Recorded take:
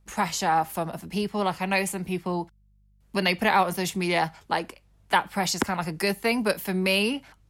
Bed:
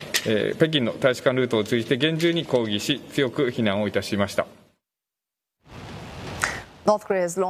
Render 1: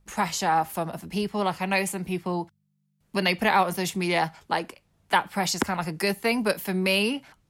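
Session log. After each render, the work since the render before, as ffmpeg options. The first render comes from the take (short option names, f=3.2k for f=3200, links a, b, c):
-af "bandreject=f=50:t=h:w=4,bandreject=f=100:t=h:w=4"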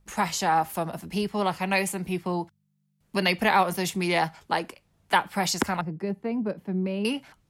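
-filter_complex "[0:a]asettb=1/sr,asplit=3[a][b][c];[a]atrim=end=5.814[d];[b]atrim=start=5.81:end=7.05,asetpts=PTS-STARTPTS,afade=t=in:d=0.004:c=qsin,afade=t=out:st=1.236:d=0.004:c=qsin,bandpass=f=170:t=q:w=0.65[e];[c]atrim=start=7.046[f];[d][e]acrossfade=d=0.004:c1=hsin:c2=qsin[g];[g][f]acrossfade=d=0.004:c1=qsin:c2=hsin"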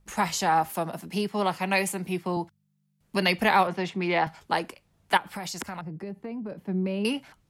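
-filter_complex "[0:a]asettb=1/sr,asplit=3[a][b][c];[a]atrim=end=0.714[d];[b]atrim=start=0.71:end=2.37,asetpts=PTS-STARTPTS,afade=t=in:d=0.004:c=qsin,afade=t=out:st=1.656:d=0.004:c=qsin,highpass=140[e];[c]atrim=start=2.366[f];[d][e]acrossfade=d=0.004:c1=hsin:c2=qsin[g];[g][f]acrossfade=d=0.004:c1=qsin:c2=hsin,asettb=1/sr,asplit=3[h][i][j];[h]atrim=end=3.674[k];[i]atrim=start=3.67:end=4.27,asetpts=PTS-STARTPTS,afade=t=in:d=0.004:c=qsin,afade=t=out:st=0.596:d=0.004:c=qsin,highpass=160,lowpass=2.9k[l];[j]atrim=start=4.266[m];[k][l]acrossfade=d=0.004:c1=hsin:c2=qsin[n];[n][m]acrossfade=d=0.004:c1=qsin:c2=hsin,asettb=1/sr,asplit=3[o][p][q];[o]atrim=end=5.174[r];[p]atrim=start=5.17:end=6.52,asetpts=PTS-STARTPTS,afade=t=in:d=0.004:c=qsin,afade=t=out:st=1.346:d=0.004:c=qsin,acompressor=threshold=-32dB:ratio=5:attack=3.2:release=140:knee=1:detection=peak[s];[q]atrim=start=6.516[t];[r][s]acrossfade=d=0.004:c1=hsin:c2=qsin[u];[u][t]acrossfade=d=0.004:c1=qsin:c2=hsin"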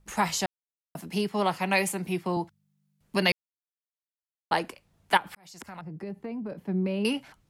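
-filter_complex "[0:a]asplit=6[a][b][c][d][e][f];[a]atrim=end=0.46,asetpts=PTS-STARTPTS,afade=t=out:st=0.456:d=0.004:c=hsin[g];[b]atrim=start=0.46:end=0.95,asetpts=PTS-STARTPTS,volume=0[h];[c]atrim=start=0.95:end=3.32,asetpts=PTS-STARTPTS,afade=t=in:d=0.004:c=hsin,afade=t=out:st=2.366:d=0.004:c=hsin[i];[d]atrim=start=3.32:end=4.51,asetpts=PTS-STARTPTS,volume=0[j];[e]atrim=start=4.51:end=5.35,asetpts=PTS-STARTPTS,afade=t=in:d=0.004:c=hsin,afade=t=out:st=0.836:d=0.004:c=hsin[k];[f]atrim=start=5.35,asetpts=PTS-STARTPTS,afade=t=in:d=0.75[l];[g][h][i][j][k][l]concat=n=6:v=0:a=1"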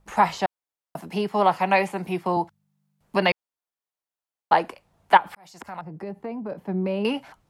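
-filter_complex "[0:a]equalizer=f=810:t=o:w=1.7:g=9,acrossover=split=4200[a][b];[b]acompressor=threshold=-48dB:ratio=4:attack=1:release=60[c];[a][c]amix=inputs=2:normalize=0"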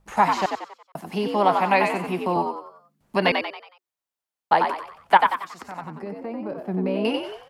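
-filter_complex "[0:a]asplit=6[a][b][c][d][e][f];[b]adelay=92,afreqshift=70,volume=-5dB[g];[c]adelay=184,afreqshift=140,volume=-12.7dB[h];[d]adelay=276,afreqshift=210,volume=-20.5dB[i];[e]adelay=368,afreqshift=280,volume=-28.2dB[j];[f]adelay=460,afreqshift=350,volume=-36dB[k];[a][g][h][i][j][k]amix=inputs=6:normalize=0"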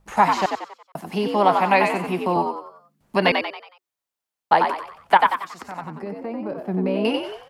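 -af "volume=2dB,alimiter=limit=-3dB:level=0:latency=1"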